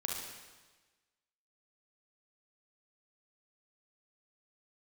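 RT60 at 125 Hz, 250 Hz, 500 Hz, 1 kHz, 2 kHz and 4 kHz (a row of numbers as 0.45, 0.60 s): 1.3, 1.3, 1.3, 1.3, 1.3, 1.3 s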